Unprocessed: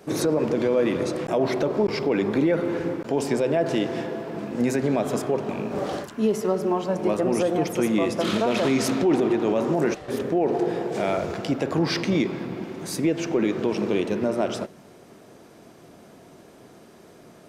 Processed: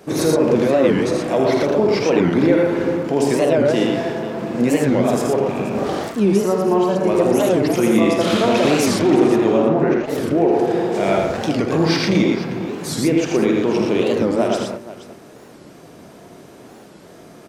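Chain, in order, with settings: 9.57–10.06 Bessel low-pass 2000 Hz, order 2; on a send: tapped delay 50/81/117/478 ms -9/-4.5/-4/-15 dB; on the sum: record warp 45 rpm, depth 250 cents; gain +4 dB

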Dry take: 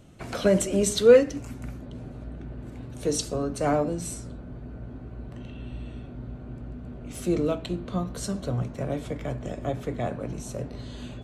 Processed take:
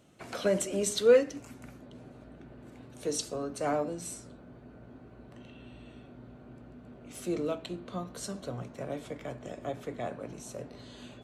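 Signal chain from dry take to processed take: HPF 300 Hz 6 dB/oct; gain -4.5 dB

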